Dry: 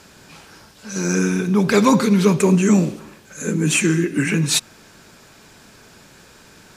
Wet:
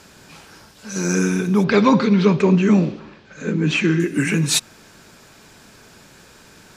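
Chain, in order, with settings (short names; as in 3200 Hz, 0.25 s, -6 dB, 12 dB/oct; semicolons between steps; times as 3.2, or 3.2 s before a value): 1.64–4 LPF 4600 Hz 24 dB/oct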